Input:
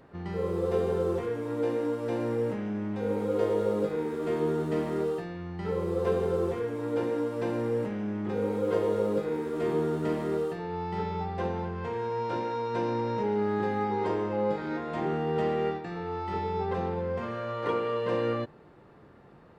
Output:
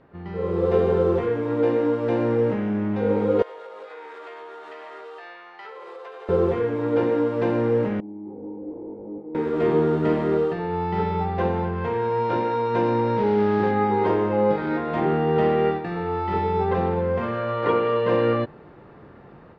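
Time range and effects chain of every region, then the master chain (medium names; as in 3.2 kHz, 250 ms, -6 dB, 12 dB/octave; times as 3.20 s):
3.42–6.29 s: Bessel high-pass 930 Hz, order 4 + compression 10:1, threshold -43 dBFS
8.00–9.35 s: one-bit delta coder 16 kbps, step -42 dBFS + cascade formant filter u + bass shelf 300 Hz -9.5 dB
13.17–13.71 s: one-bit delta coder 32 kbps, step -35.5 dBFS + distance through air 160 m
whole clip: low-pass 3.3 kHz 12 dB/octave; level rider gain up to 8 dB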